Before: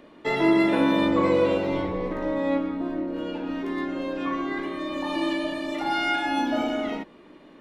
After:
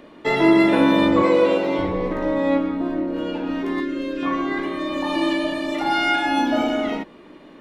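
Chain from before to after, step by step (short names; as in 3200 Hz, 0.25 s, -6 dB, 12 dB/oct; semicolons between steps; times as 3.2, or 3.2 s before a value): 1.22–1.79 HPF 230 Hz 12 dB/oct; 3.8–4.23 fixed phaser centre 330 Hz, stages 4; gain +5 dB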